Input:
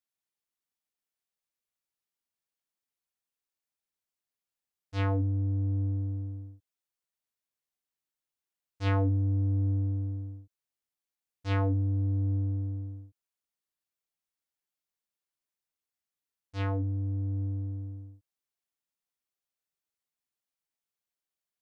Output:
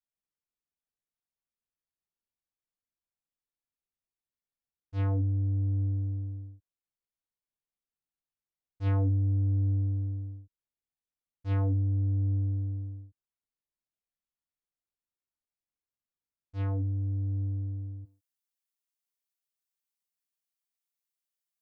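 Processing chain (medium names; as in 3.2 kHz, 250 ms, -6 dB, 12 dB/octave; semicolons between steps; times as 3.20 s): tilt EQ -2.5 dB/octave, from 18.04 s +2.5 dB/octave; trim -7.5 dB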